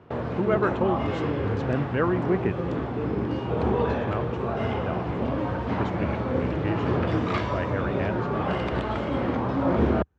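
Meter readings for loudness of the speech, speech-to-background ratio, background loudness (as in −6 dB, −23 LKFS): −31.0 LKFS, −3.5 dB, −27.5 LKFS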